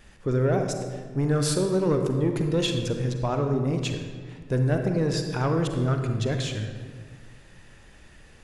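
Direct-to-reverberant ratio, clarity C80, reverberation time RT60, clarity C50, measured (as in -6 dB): 4.5 dB, 7.0 dB, 1.8 s, 5.0 dB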